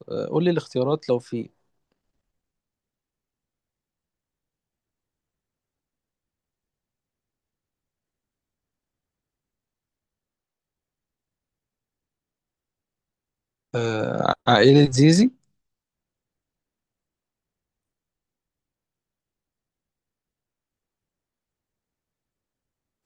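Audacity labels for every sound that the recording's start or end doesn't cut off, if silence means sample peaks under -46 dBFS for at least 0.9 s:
13.740000	15.320000	sound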